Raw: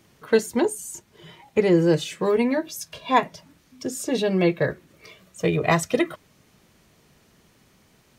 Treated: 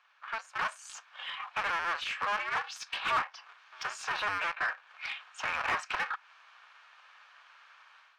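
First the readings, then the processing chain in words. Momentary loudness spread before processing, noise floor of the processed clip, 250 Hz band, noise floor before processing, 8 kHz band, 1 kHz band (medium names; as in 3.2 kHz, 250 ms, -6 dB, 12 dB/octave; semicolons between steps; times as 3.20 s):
15 LU, -61 dBFS, -33.0 dB, -60 dBFS, -13.5 dB, -4.5 dB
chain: cycle switcher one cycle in 2, inverted; band-stop 2 kHz, Q 8.8; dynamic bell 3.5 kHz, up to -4 dB, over -48 dBFS, Q 3.7; in parallel at -11 dB: wavefolder -17.5 dBFS; on the sum: compression 3:1, threshold -32 dBFS, peak gain reduction 14 dB; saturation -23 dBFS, distortion -21 dB; level rider gain up to 10 dB; high-pass 1.2 kHz 24 dB/octave; tape spacing loss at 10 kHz 29 dB; spectral noise reduction 7 dB; overdrive pedal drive 19 dB, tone 1.7 kHz, clips at -19 dBFS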